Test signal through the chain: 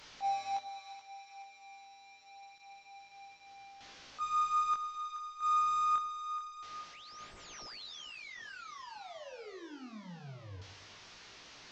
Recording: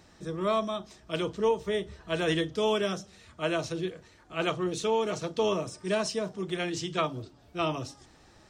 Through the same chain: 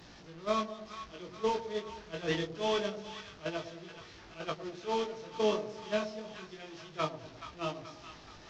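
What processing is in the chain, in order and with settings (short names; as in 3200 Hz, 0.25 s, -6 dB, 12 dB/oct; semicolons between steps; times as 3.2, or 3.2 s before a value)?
delta modulation 32 kbps, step -30.5 dBFS; gate -26 dBFS, range -14 dB; chorus 0.26 Hz, delay 17.5 ms, depth 6.3 ms; split-band echo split 870 Hz, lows 0.105 s, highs 0.427 s, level -10.5 dB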